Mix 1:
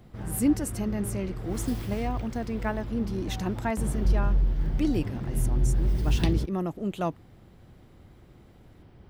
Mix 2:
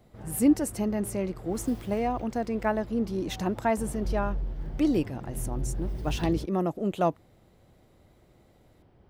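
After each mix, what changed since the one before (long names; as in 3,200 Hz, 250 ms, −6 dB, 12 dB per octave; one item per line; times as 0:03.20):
background −8.5 dB
master: add parametric band 610 Hz +6 dB 1.6 octaves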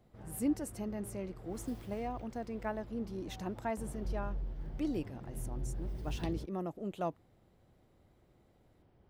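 speech −11.0 dB
background −7.0 dB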